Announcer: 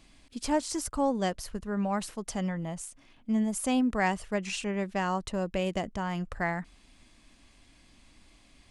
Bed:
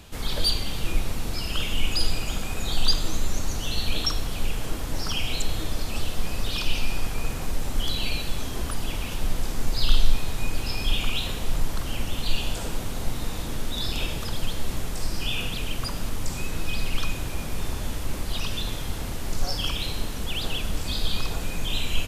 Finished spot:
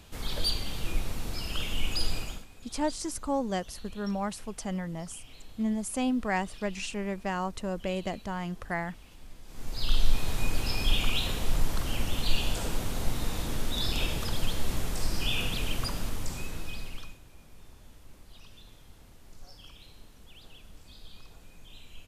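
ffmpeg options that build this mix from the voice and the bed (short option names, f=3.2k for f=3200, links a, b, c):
-filter_complex "[0:a]adelay=2300,volume=-2dB[a];[1:a]volume=16dB,afade=t=out:st=2.18:d=0.28:silence=0.133352,afade=t=in:st=9.45:d=0.87:silence=0.0841395,afade=t=out:st=15.73:d=1.46:silence=0.0841395[b];[a][b]amix=inputs=2:normalize=0"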